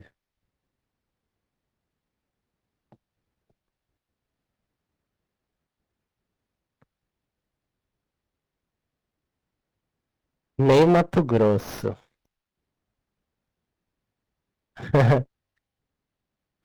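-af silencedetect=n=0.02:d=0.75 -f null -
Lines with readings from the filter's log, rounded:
silence_start: 0.00
silence_end: 10.59 | silence_duration: 10.59
silence_start: 11.93
silence_end: 14.78 | silence_duration: 2.85
silence_start: 15.23
silence_end: 16.64 | silence_duration: 1.42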